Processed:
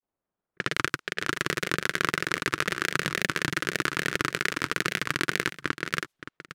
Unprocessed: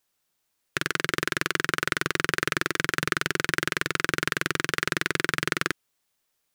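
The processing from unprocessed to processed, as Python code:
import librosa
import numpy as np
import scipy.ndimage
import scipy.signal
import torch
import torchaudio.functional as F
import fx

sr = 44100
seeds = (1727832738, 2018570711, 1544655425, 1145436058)

p1 = fx.block_reorder(x, sr, ms=183.0, group=3)
p2 = fx.env_lowpass(p1, sr, base_hz=950.0, full_db=-27.0)
p3 = fx.granulator(p2, sr, seeds[0], grain_ms=100.0, per_s=20.0, spray_ms=100.0, spread_st=3)
y = p3 + fx.echo_single(p3, sr, ms=571, db=-13.5, dry=0)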